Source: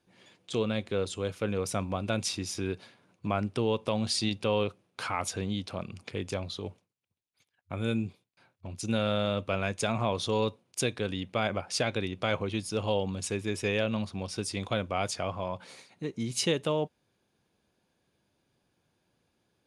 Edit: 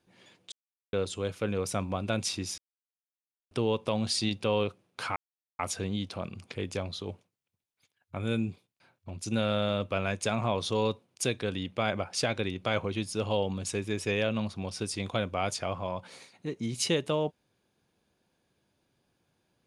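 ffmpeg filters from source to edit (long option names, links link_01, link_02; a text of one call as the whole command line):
ffmpeg -i in.wav -filter_complex "[0:a]asplit=6[link_01][link_02][link_03][link_04][link_05][link_06];[link_01]atrim=end=0.52,asetpts=PTS-STARTPTS,afade=type=out:start_time=0.516:duration=0.004:curve=hsin[link_07];[link_02]atrim=start=0.52:end=0.93,asetpts=PTS-STARTPTS,volume=0[link_08];[link_03]atrim=start=0.93:end=2.58,asetpts=PTS-STARTPTS,afade=type=in:duration=0.004:curve=hsin,afade=type=out:start_time=1.646:duration=0.004:curve=hsin[link_09];[link_04]atrim=start=2.58:end=3.51,asetpts=PTS-STARTPTS,volume=0[link_10];[link_05]atrim=start=3.51:end=5.16,asetpts=PTS-STARTPTS,afade=type=in:duration=0.004:curve=hsin,afade=type=out:start_time=1.646:duration=0.004:curve=hsin,apad=pad_dur=0.43[link_11];[link_06]atrim=start=5.16,asetpts=PTS-STARTPTS,afade=type=in:duration=0.004:curve=hsin[link_12];[link_07][link_08][link_09][link_10][link_11][link_12]concat=n=6:v=0:a=1" out.wav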